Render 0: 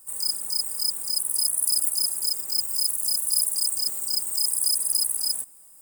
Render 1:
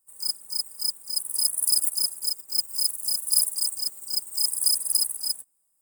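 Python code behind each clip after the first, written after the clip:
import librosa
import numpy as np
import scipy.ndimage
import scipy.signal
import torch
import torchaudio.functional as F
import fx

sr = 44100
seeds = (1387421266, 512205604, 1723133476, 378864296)

y = fx.upward_expand(x, sr, threshold_db=-36.0, expansion=2.5)
y = y * librosa.db_to_amplitude(4.0)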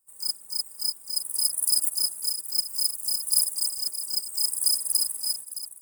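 y = x + 10.0 ** (-11.5 / 20.0) * np.pad(x, (int(616 * sr / 1000.0), 0))[:len(x)]
y = y * librosa.db_to_amplitude(-1.0)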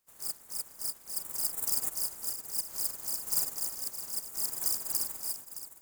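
y = fx.spec_clip(x, sr, under_db=27)
y = y * librosa.db_to_amplitude(-7.0)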